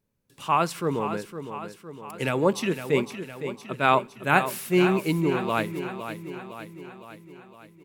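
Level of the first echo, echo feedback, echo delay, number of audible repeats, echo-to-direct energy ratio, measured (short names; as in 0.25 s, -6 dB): -10.0 dB, 57%, 0.51 s, 6, -8.5 dB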